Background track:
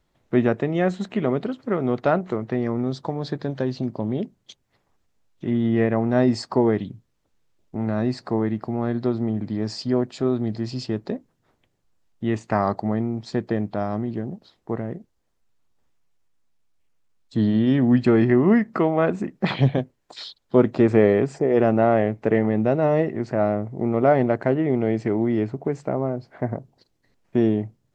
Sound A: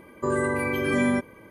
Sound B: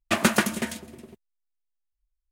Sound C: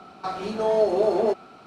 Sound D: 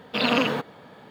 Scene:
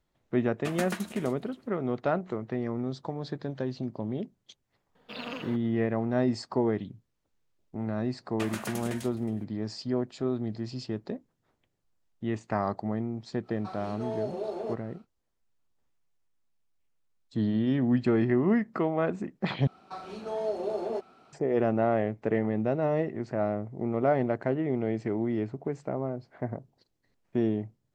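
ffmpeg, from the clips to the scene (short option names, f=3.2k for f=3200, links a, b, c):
-filter_complex "[2:a]asplit=2[a][b];[3:a]asplit=2[c][d];[0:a]volume=-7.5dB[e];[b]alimiter=limit=-16dB:level=0:latency=1:release=131[f];[e]asplit=2[g][h];[g]atrim=end=19.674[i];[d]atrim=end=1.66,asetpts=PTS-STARTPTS,volume=-10.5dB[j];[h]atrim=start=21.326[k];[a]atrim=end=2.31,asetpts=PTS-STARTPTS,volume=-14dB,afade=t=in:d=0.004:c=hsin,afade=t=out:st=2.306:d=0.004:c=hsin,adelay=540[l];[4:a]atrim=end=1.1,asetpts=PTS-STARTPTS,volume=-16.5dB,afade=t=in:d=0.004:c=hsin,afade=t=out:st=1.096:d=0.004:c=hsin,adelay=4950[m];[f]atrim=end=2.31,asetpts=PTS-STARTPTS,volume=-7.5dB,afade=t=in:d=0.004:c=hsin,afade=t=out:st=2.306:d=0.004:c=hsin,adelay=8290[n];[c]atrim=end=1.66,asetpts=PTS-STARTPTS,volume=-13dB,afade=t=in:d=0.1,afade=t=out:st=1.56:d=0.1,adelay=13410[o];[i][j]acrossfade=d=0.004:c1=hsin:c2=hsin[p];[p][k]acrossfade=d=0.004:c1=hsin:c2=hsin[q];[q][l][m][n][o]amix=inputs=5:normalize=0"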